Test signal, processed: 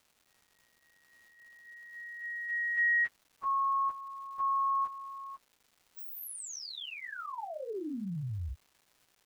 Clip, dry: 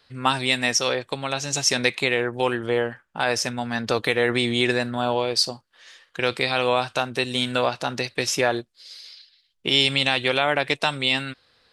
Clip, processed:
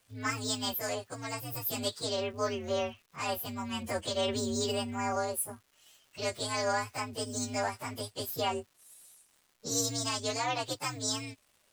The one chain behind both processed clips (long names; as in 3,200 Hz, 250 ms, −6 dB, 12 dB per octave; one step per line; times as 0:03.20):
partials spread apart or drawn together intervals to 127%
surface crackle 540 per second −47 dBFS
level −7.5 dB